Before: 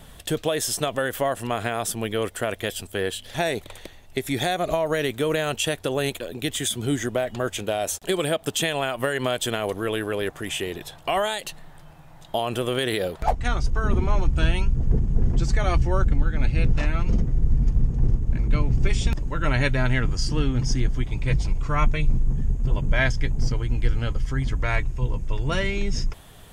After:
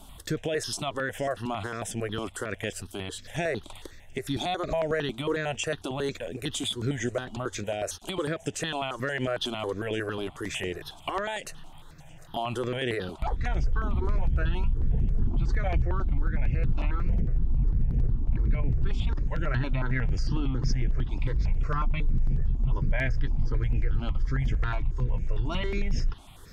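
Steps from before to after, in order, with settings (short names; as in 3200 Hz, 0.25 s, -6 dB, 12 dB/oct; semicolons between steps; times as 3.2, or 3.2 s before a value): treble ducked by the level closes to 2800 Hz, closed at -16.5 dBFS; limiter -16.5 dBFS, peak gain reduction 9 dB; on a send: thin delay 0.516 s, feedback 71%, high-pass 3500 Hz, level -21 dB; on the sum: step phaser 11 Hz 490–4100 Hz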